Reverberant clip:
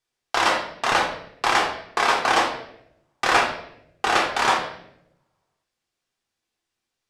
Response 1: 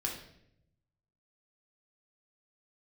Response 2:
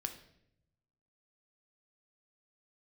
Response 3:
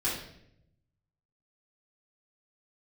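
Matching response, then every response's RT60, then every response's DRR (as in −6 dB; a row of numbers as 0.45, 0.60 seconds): 1; 0.75, 0.75, 0.75 seconds; −2.0, 5.5, −11.0 decibels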